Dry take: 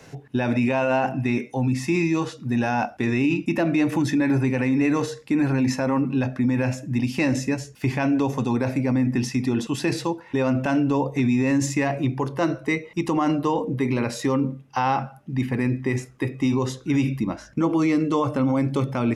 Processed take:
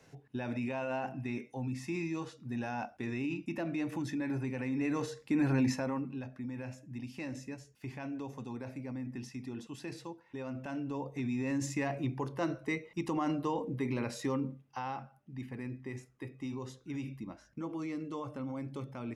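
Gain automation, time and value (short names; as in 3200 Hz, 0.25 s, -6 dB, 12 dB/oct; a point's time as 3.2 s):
4.57 s -14.5 dB
5.6 s -6.5 dB
6.23 s -19 dB
10.48 s -19 dB
11.82 s -11 dB
14.32 s -11 dB
14.99 s -18 dB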